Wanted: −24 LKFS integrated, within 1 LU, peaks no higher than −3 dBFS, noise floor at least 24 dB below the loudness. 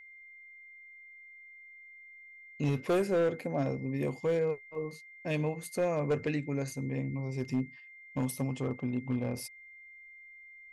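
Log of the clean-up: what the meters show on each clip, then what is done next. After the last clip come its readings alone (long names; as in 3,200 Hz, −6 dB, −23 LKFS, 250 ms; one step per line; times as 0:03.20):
share of clipped samples 1.2%; peaks flattened at −23.5 dBFS; interfering tone 2,100 Hz; level of the tone −50 dBFS; integrated loudness −33.5 LKFS; sample peak −23.5 dBFS; target loudness −24.0 LKFS
→ clipped peaks rebuilt −23.5 dBFS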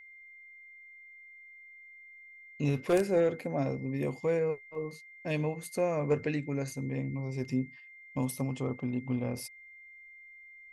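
share of clipped samples 0.0%; interfering tone 2,100 Hz; level of the tone −50 dBFS
→ notch filter 2,100 Hz, Q 30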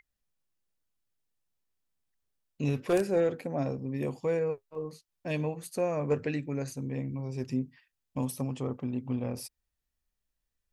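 interfering tone none found; integrated loudness −32.5 LKFS; sample peak −14.5 dBFS; target loudness −24.0 LKFS
→ level +8.5 dB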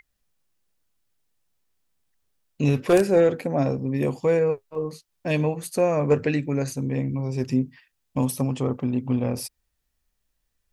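integrated loudness −24.0 LKFS; sample peak −6.0 dBFS; background noise floor −76 dBFS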